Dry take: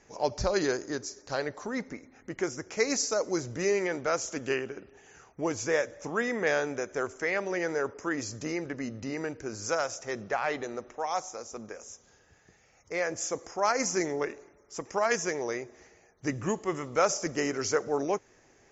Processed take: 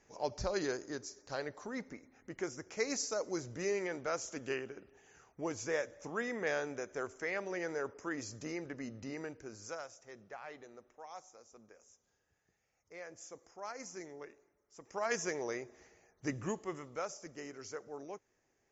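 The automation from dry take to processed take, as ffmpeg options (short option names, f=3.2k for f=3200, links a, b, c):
-af "volume=4dB,afade=t=out:st=9.1:d=0.84:silence=0.316228,afade=t=in:st=14.78:d=0.42:silence=0.251189,afade=t=out:st=16.3:d=0.81:silence=0.281838"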